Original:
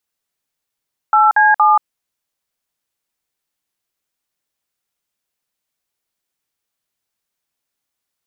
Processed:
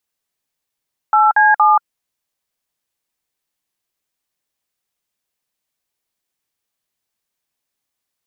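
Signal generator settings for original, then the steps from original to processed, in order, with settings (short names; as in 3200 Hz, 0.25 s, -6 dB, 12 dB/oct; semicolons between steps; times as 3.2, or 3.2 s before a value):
DTMF "8C7", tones 0.181 s, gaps 52 ms, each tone -10.5 dBFS
notch 1400 Hz, Q 17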